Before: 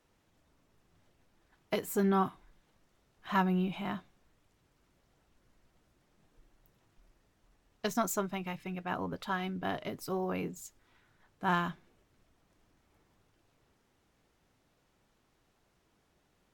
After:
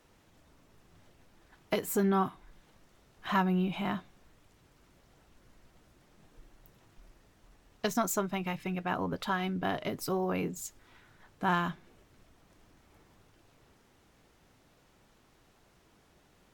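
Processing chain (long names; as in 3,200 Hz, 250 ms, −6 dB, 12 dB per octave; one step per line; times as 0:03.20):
downward compressor 1.5 to 1, threshold −45 dBFS, peak gain reduction 8 dB
level +8 dB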